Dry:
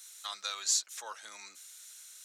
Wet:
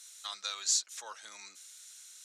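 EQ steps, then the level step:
high-frequency loss of the air 52 metres
low-shelf EQ 220 Hz +5 dB
high-shelf EQ 4,000 Hz +9.5 dB
−3.0 dB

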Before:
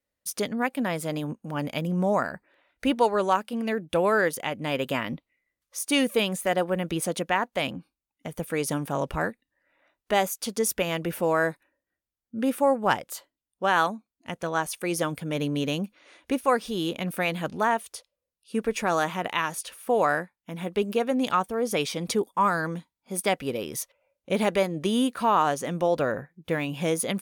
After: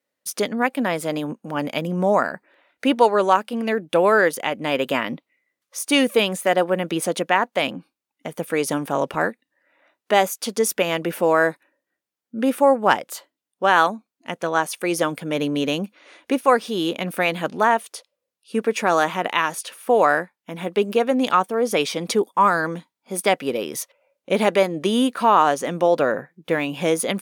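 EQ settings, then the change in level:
high-pass filter 220 Hz 12 dB per octave
high-shelf EQ 5,600 Hz −4.5 dB
+6.5 dB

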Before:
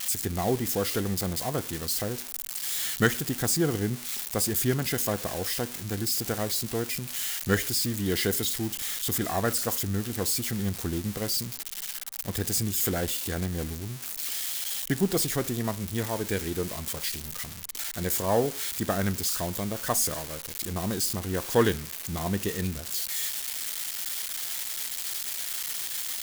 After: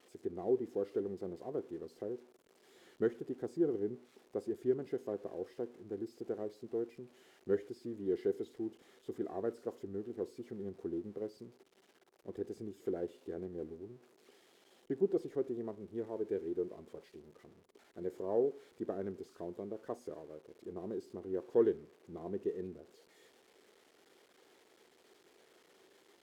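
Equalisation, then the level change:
resonant band-pass 390 Hz, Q 3.6
−1.5 dB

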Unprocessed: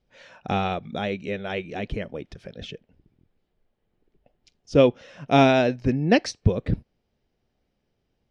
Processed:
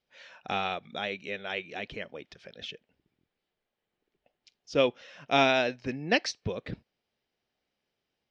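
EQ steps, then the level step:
high-frequency loss of the air 150 metres
spectral tilt +4 dB per octave
−3.5 dB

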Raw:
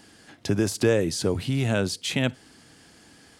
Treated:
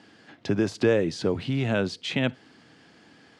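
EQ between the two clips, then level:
band-pass filter 120–3,800 Hz
0.0 dB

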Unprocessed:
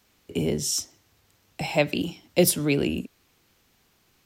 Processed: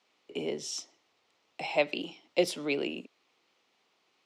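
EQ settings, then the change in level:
high-pass filter 410 Hz 12 dB per octave
low-pass filter 4,200 Hz 12 dB per octave
parametric band 1,600 Hz −7.5 dB 0.3 octaves
−3.0 dB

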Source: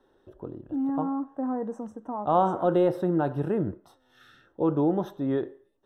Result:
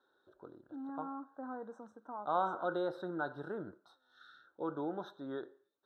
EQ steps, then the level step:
pair of resonant band-passes 2,400 Hz, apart 1.4 octaves
parametric band 2,100 Hz −13 dB 2.8 octaves
high-shelf EQ 3,000 Hz −7.5 dB
+15.0 dB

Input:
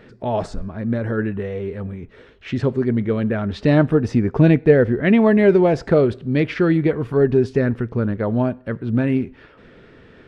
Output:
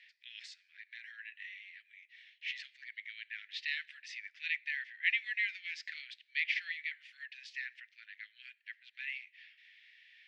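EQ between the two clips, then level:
Butterworth high-pass 1,900 Hz 72 dB per octave
high-frequency loss of the air 150 metres
0.0 dB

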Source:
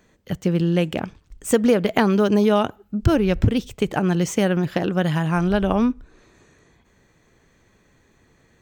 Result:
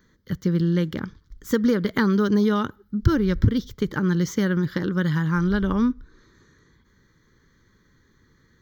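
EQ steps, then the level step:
phaser with its sweep stopped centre 2,600 Hz, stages 6
0.0 dB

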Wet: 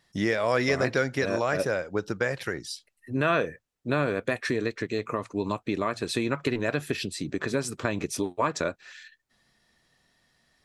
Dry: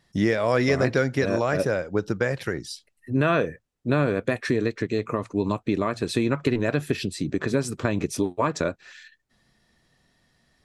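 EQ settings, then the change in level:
low-shelf EQ 450 Hz −7 dB
0.0 dB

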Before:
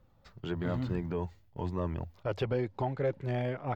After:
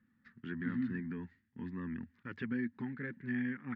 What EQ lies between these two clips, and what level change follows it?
pair of resonant band-passes 640 Hz, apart 2.9 octaves
+7.5 dB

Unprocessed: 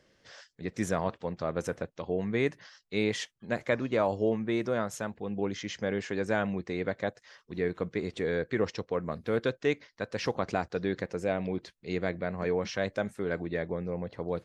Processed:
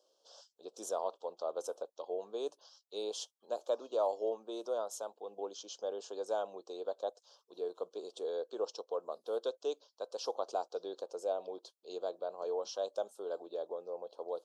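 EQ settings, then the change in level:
high-pass filter 470 Hz 24 dB per octave
Butterworth band-reject 2,000 Hz, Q 0.65
parametric band 3,200 Hz +4.5 dB 0.21 octaves
−2.5 dB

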